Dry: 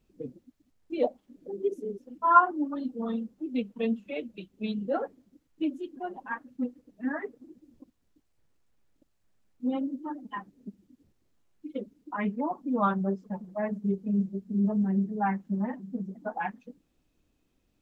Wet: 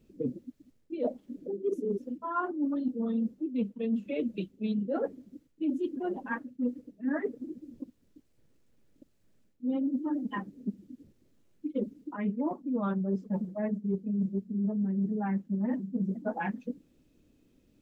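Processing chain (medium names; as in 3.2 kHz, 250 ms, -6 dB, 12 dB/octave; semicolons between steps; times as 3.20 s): graphic EQ 125/250/500/1000 Hz +4/+7/+5/-5 dB; reverse; compression 16:1, threshold -30 dBFS, peak gain reduction 16 dB; reverse; band-stop 740 Hz, Q 12; trim +3 dB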